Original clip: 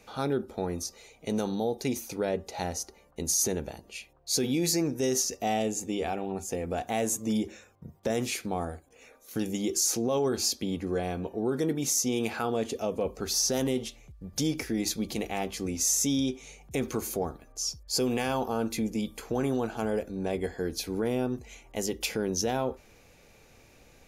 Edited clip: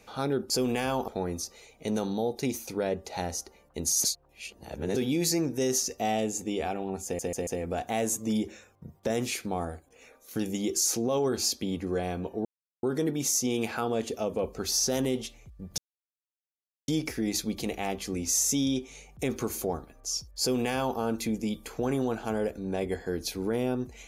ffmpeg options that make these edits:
-filter_complex "[0:a]asplit=10[a][b][c][d][e][f][g][h][i][j];[a]atrim=end=0.502[k];[b]atrim=start=17.918:end=18.502[l];[c]atrim=start=0.498:end=3.462[m];[d]atrim=start=3.458:end=4.382,asetpts=PTS-STARTPTS,areverse[n];[e]atrim=start=4.378:end=6.612[o];[f]atrim=start=6.468:end=6.612[p];[g]atrim=start=6.468:end=6.612[q];[h]atrim=start=6.468:end=11.45,asetpts=PTS-STARTPTS,afade=t=out:st=4.978:d=0.004:c=hsin,apad=pad_dur=0.38[r];[i]atrim=start=11.45:end=14.4,asetpts=PTS-STARTPTS,afade=t=in:d=0.004:c=hsin,afade=t=out:st=2.946:d=0.004:c=hsin,apad=pad_dur=1.1[s];[j]atrim=start=14.4,asetpts=PTS-STARTPTS,afade=t=in:d=0.004:c=hsin[t];[k][l]acrossfade=d=0.004:c1=hsin:c2=hsin[u];[u][m]acrossfade=d=0.004:c1=hsin:c2=hsin[v];[v][n]acrossfade=d=0.004:c1=hsin:c2=hsin[w];[w][o]acrossfade=d=0.004:c1=hsin:c2=hsin[x];[x][p]acrossfade=d=0.004:c1=hsin:c2=hsin[y];[y][q]acrossfade=d=0.004:c1=hsin:c2=hsin[z];[r][s][t]concat=n=3:v=0:a=1[aa];[z][aa]acrossfade=d=0.004:c1=hsin:c2=hsin"

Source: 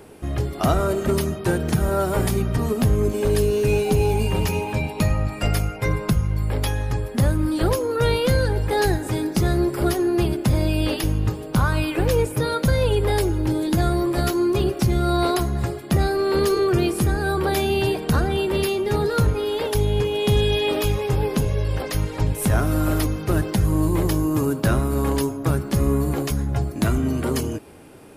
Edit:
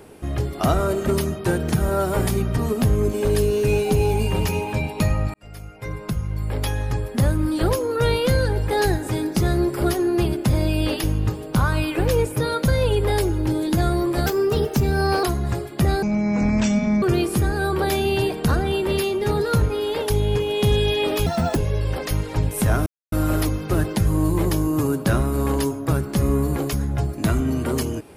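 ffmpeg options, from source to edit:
-filter_complex "[0:a]asplit=9[a][b][c][d][e][f][g][h][i];[a]atrim=end=5.34,asetpts=PTS-STARTPTS,afade=t=out:st=5.336:d=0.004:c=hsin[j];[b]atrim=start=5.34:end=14.264,asetpts=PTS-STARTPTS,afade=t=in:d=1.48[k];[c]atrim=start=14.26:end=15.35,asetpts=PTS-STARTPTS,asetrate=49392,aresample=44100[l];[d]atrim=start=15.346:end=16.144[m];[e]atrim=start=16.14:end=16.67,asetpts=PTS-STARTPTS,asetrate=23373,aresample=44100[n];[f]atrim=start=16.666:end=20.914[o];[g]atrim=start=20.91:end=21.4,asetpts=PTS-STARTPTS,asetrate=72324,aresample=44100,atrim=end_sample=13176,asetpts=PTS-STARTPTS[p];[h]atrim=start=21.396:end=22.7,asetpts=PTS-STARTPTS,afade=t=out:st=1.3:d=0.004:c=hsin,apad=pad_dur=0.26[q];[i]atrim=start=22.7,asetpts=PTS-STARTPTS,afade=t=in:d=0.004:c=hsin[r];[j][k]concat=n=2:v=0:a=1[s];[s][l]acrossfade=d=0.004:c1=hsin:c2=hsin[t];[t][m]acrossfade=d=0.004:c1=hsin:c2=hsin[u];[u][n]acrossfade=d=0.004:c1=hsin:c2=hsin[v];[v][o]acrossfade=d=0.004:c1=hsin:c2=hsin[w];[w][p]acrossfade=d=0.004:c1=hsin:c2=hsin[x];[q][r]concat=n=2:v=0:a=1[y];[x][y]acrossfade=d=0.004:c1=hsin:c2=hsin"

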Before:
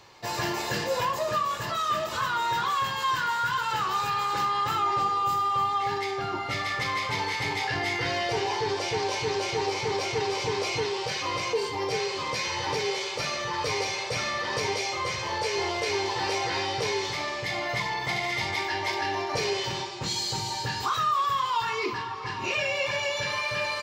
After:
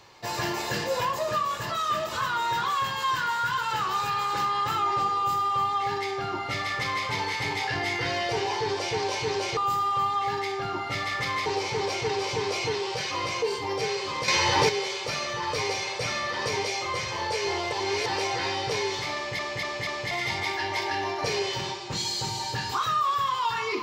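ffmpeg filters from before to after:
-filter_complex "[0:a]asplit=11[a][b][c][d][e][f][g][h][i][j][k];[a]atrim=end=9.572[l];[b]atrim=start=5.158:end=7.052[m];[c]atrim=start=9.568:end=12.392[n];[d]atrim=start=12.388:end=12.802,asetpts=PTS-STARTPTS,volume=7.5dB[o];[e]atrim=start=12.798:end=15.832[p];[f]atrim=start=15.828:end=16.172,asetpts=PTS-STARTPTS,areverse[q];[g]atrim=start=16.168:end=17.502[r];[h]atrim=start=17.258:end=17.502[s];[i]atrim=start=17.258:end=17.502[t];[j]atrim=start=17.258:end=17.502[u];[k]atrim=start=18.218[v];[l][m]acrossfade=d=0.004:c1=hsin:c2=hsin[w];[w][n]acrossfade=d=0.004:c1=hsin:c2=hsin[x];[x][o]acrossfade=d=0.004:c1=hsin:c2=hsin[y];[y][p]acrossfade=d=0.004:c1=hsin:c2=hsin[z];[z][q]acrossfade=d=0.004:c1=hsin:c2=hsin[aa];[aa][r]acrossfade=d=0.004:c1=hsin:c2=hsin[ab];[ab][s]acrossfade=d=0.004:c1=hsin:c2=hsin[ac];[ac][t]acrossfade=d=0.004:c1=hsin:c2=hsin[ad];[ad][u]acrossfade=d=0.004:c1=hsin:c2=hsin[ae];[ae][v]acrossfade=d=0.004:c1=hsin:c2=hsin"

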